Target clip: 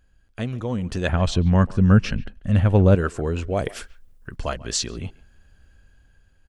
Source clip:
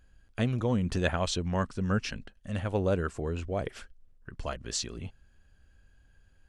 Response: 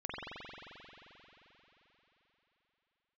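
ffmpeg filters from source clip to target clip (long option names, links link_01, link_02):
-filter_complex "[0:a]asettb=1/sr,asplit=3[link_01][link_02][link_03];[link_01]atrim=end=3.564[link_04];[link_02]atrim=start=3.56:end=4.36,asetpts=PTS-STARTPTS,afade=type=in:duration=0.004:curve=qsin,afade=type=out:start_time=0.796:duration=0.004:curve=qsin,highshelf=frequency=7800:gain=11.5[link_05];[link_03]atrim=start=4.356[link_06];[link_04][link_05]acrossfade=duration=0.004:curve1=hsin:curve2=qsin[link_07];[link_07][link_06]acrossfade=duration=0.004:curve1=qsin:curve2=hsin,asplit=2[link_08][link_09];[link_09]adelay=140,highpass=300,lowpass=3400,asoftclip=type=hard:threshold=-19.5dB,volume=-20dB[link_10];[link_08][link_10]amix=inputs=2:normalize=0,dynaudnorm=framelen=330:gausssize=7:maxgain=8dB,asettb=1/sr,asplit=3[link_11][link_12][link_13];[link_11]atrim=end=1.094[link_14];[link_12]atrim=start=1.09:end=2.95,asetpts=PTS-STARTPTS,afade=type=in:duration=0.004:curve=qsin,afade=type=out:start_time=1.856:duration=0.004:curve=qsin,bass=frequency=250:gain=9,treble=frequency=4000:gain=-6[link_15];[link_13]atrim=start=2.946[link_16];[link_14][link_15]acrossfade=duration=0.004:curve1=hsin:curve2=qsin[link_17];[link_17][link_16]acrossfade=duration=0.004:curve1=qsin:curve2=hsin"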